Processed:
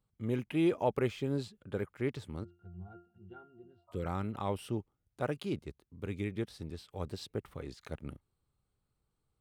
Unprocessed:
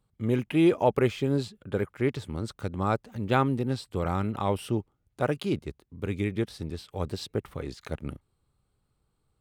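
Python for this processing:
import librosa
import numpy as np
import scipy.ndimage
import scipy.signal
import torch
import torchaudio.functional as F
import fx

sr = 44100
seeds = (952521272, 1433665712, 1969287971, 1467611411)

y = fx.spec_repair(x, sr, seeds[0], start_s=3.55, length_s=0.48, low_hz=560.0, high_hz=1300.0, source='before')
y = fx.octave_resonator(y, sr, note='F', decay_s=0.33, at=(2.43, 3.87), fade=0.02)
y = F.gain(torch.from_numpy(y), -7.5).numpy()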